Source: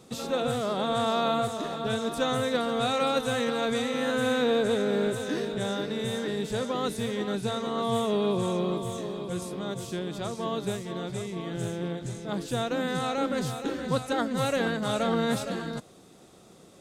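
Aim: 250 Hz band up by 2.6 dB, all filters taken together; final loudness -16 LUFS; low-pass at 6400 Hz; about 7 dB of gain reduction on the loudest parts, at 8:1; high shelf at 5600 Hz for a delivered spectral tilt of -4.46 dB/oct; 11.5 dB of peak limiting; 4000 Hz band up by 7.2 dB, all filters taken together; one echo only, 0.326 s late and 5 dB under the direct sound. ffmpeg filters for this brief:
-af "lowpass=6.4k,equalizer=f=250:t=o:g=3,equalizer=f=4k:t=o:g=6,highshelf=f=5.6k:g=7.5,acompressor=threshold=-27dB:ratio=8,alimiter=level_in=5.5dB:limit=-24dB:level=0:latency=1,volume=-5.5dB,aecho=1:1:326:0.562,volume=20.5dB"

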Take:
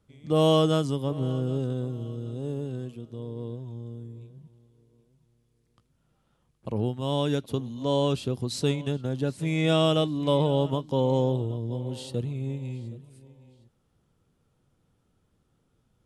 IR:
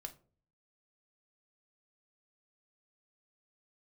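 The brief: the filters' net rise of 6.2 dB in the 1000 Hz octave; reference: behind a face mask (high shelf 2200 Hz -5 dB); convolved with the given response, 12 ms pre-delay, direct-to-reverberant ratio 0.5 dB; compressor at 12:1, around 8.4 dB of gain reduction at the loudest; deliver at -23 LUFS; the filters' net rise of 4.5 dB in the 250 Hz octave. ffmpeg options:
-filter_complex "[0:a]equalizer=f=250:t=o:g=5.5,equalizer=f=1k:t=o:g=8,acompressor=threshold=-22dB:ratio=12,asplit=2[a][b];[1:a]atrim=start_sample=2205,adelay=12[c];[b][c]afir=irnorm=-1:irlink=0,volume=3.5dB[d];[a][d]amix=inputs=2:normalize=0,highshelf=f=2.2k:g=-5,volume=4dB"

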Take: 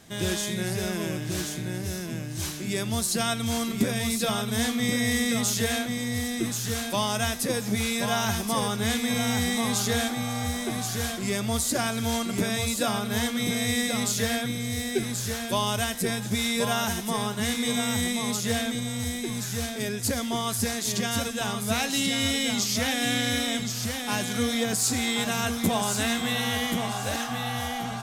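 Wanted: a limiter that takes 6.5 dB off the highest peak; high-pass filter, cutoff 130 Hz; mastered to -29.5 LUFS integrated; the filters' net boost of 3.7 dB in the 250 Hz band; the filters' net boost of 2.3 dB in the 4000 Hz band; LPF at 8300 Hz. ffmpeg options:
-af "highpass=130,lowpass=8.3k,equalizer=f=250:t=o:g=4.5,equalizer=f=4k:t=o:g=3,volume=-3dB,alimiter=limit=-19dB:level=0:latency=1"

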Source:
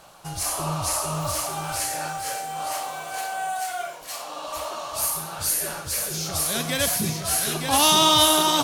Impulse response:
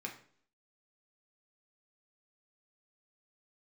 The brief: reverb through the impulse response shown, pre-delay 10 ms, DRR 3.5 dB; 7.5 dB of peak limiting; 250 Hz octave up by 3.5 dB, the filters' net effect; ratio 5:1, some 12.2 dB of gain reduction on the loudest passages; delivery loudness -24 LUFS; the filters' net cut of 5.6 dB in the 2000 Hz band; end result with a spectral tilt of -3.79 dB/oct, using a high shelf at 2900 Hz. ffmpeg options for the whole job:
-filter_complex "[0:a]equalizer=f=250:t=o:g=5,equalizer=f=2k:t=o:g=-6,highshelf=f=2.9k:g=-5,acompressor=threshold=-30dB:ratio=5,alimiter=level_in=3dB:limit=-24dB:level=0:latency=1,volume=-3dB,asplit=2[a][b];[1:a]atrim=start_sample=2205,adelay=10[c];[b][c]afir=irnorm=-1:irlink=0,volume=-3dB[d];[a][d]amix=inputs=2:normalize=0,volume=10dB"

